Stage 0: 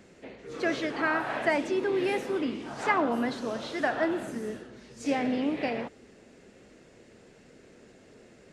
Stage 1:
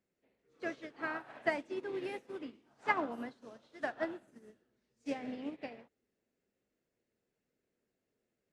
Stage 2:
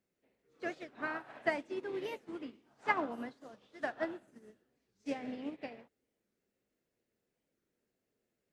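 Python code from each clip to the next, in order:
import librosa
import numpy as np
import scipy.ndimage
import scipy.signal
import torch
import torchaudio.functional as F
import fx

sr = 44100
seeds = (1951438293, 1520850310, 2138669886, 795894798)

y1 = fx.upward_expand(x, sr, threshold_db=-39.0, expansion=2.5)
y1 = F.gain(torch.from_numpy(y1), -4.0).numpy()
y2 = fx.record_warp(y1, sr, rpm=45.0, depth_cents=250.0)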